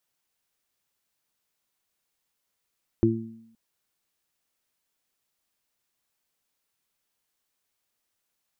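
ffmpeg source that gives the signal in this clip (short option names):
-f lavfi -i "aevalsrc='0.0891*pow(10,-3*t/0.57)*sin(2*PI*113*t)+0.0841*pow(10,-3*t/0.86)*sin(2*PI*226*t)+0.168*pow(10,-3*t/0.42)*sin(2*PI*339*t)':d=0.52:s=44100"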